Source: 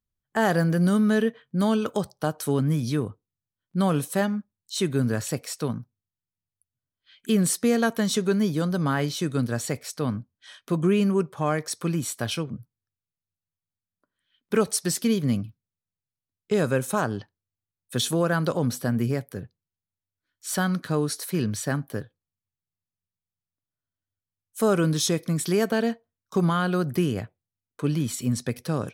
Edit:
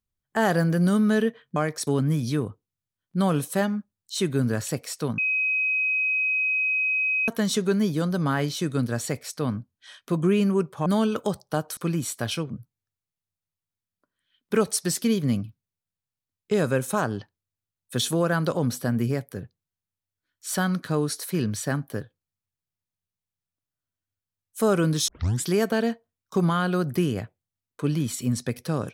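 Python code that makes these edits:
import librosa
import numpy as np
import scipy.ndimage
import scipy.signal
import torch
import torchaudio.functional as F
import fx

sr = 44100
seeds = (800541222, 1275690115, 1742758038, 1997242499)

y = fx.edit(x, sr, fx.swap(start_s=1.56, length_s=0.91, other_s=11.46, other_length_s=0.31),
    fx.bleep(start_s=5.78, length_s=2.1, hz=2530.0, db=-21.0),
    fx.tape_start(start_s=25.08, length_s=0.35), tone=tone)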